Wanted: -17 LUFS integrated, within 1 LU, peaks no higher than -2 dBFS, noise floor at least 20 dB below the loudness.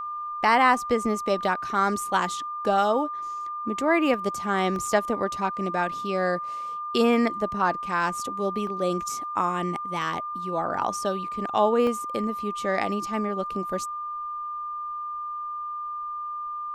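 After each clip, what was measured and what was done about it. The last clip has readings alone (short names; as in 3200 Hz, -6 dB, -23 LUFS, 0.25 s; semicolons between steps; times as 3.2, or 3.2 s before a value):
dropouts 5; longest dropout 1.3 ms; steady tone 1200 Hz; tone level -30 dBFS; loudness -26.5 LUFS; peak -7.0 dBFS; loudness target -17.0 LUFS
-> interpolate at 4.14/4.76/8.67/10.02/11.87, 1.3 ms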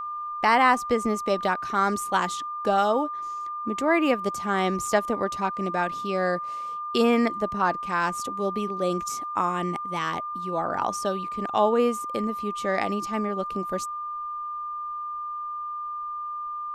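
dropouts 0; steady tone 1200 Hz; tone level -30 dBFS
-> notch 1200 Hz, Q 30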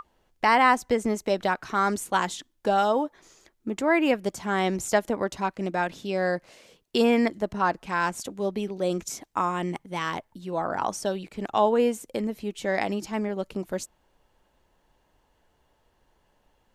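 steady tone none; loudness -26.5 LUFS; peak -7.0 dBFS; loudness target -17.0 LUFS
-> gain +9.5 dB; limiter -2 dBFS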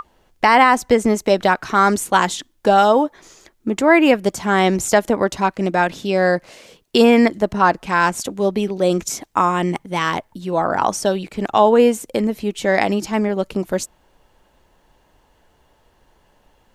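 loudness -17.5 LUFS; peak -2.0 dBFS; noise floor -59 dBFS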